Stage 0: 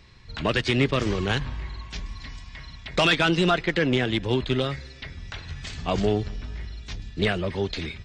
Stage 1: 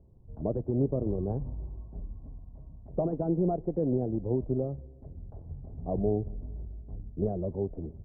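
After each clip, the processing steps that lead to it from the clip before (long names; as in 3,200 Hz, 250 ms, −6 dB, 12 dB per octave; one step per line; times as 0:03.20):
Butterworth low-pass 710 Hz 36 dB per octave
level −4.5 dB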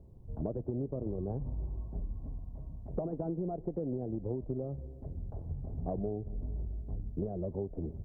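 downward compressor 12 to 1, threshold −35 dBFS, peak gain reduction 13.5 dB
level +3.5 dB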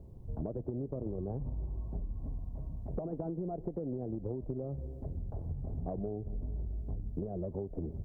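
downward compressor 4 to 1, threshold −38 dBFS, peak gain reduction 8.5 dB
level +4 dB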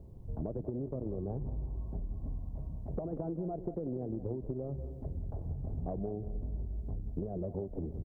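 repeating echo 189 ms, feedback 27%, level −12.5 dB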